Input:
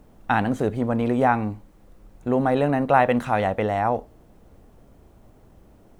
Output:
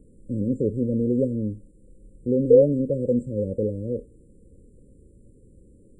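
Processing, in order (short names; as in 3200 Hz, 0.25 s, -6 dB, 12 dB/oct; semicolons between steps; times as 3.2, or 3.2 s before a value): nonlinear frequency compression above 2100 Hz 1.5:1; painted sound rise, 2.5–3.19, 450–1500 Hz -12 dBFS; brick-wall FIR band-stop 570–7100 Hz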